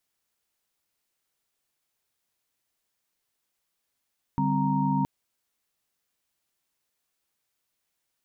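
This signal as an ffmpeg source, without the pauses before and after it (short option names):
-f lavfi -i "aevalsrc='0.0422*(sin(2*PI*146.83*t)+sin(2*PI*196*t)+sin(2*PI*261.63*t)+sin(2*PI*932.33*t))':d=0.67:s=44100"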